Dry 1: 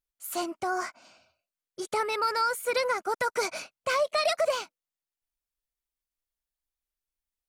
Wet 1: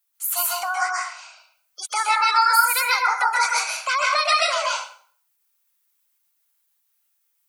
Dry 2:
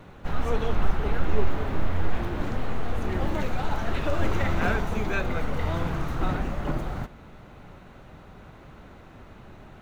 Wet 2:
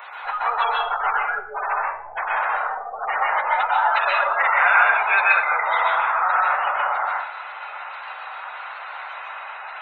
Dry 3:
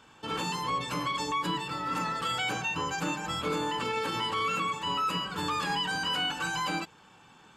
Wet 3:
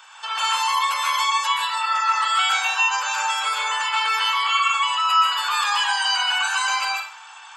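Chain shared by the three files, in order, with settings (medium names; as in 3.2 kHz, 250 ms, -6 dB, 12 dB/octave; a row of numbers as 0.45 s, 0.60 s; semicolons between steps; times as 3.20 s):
spectral gate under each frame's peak -30 dB strong; inverse Chebyshev high-pass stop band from 320 Hz, stop band 50 dB; treble shelf 11 kHz +11.5 dB; in parallel at +2.5 dB: compression, threshold -41 dBFS; on the sum: plate-style reverb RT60 0.5 s, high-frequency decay 0.85×, pre-delay 115 ms, DRR -3 dB; normalise loudness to -20 LUFS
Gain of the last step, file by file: +4.0 dB, +9.5 dB, +4.0 dB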